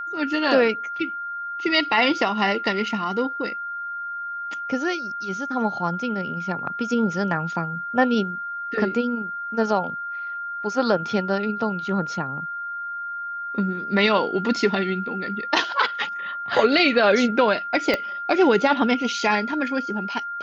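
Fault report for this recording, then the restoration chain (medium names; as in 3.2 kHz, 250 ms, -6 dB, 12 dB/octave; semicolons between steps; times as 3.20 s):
whine 1.4 kHz -28 dBFS
17.94 s: pop -9 dBFS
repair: de-click; band-stop 1.4 kHz, Q 30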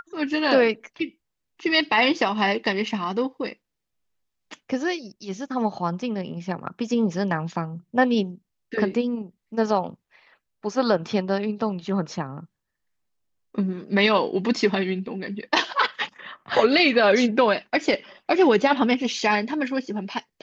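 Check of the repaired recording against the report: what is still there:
17.94 s: pop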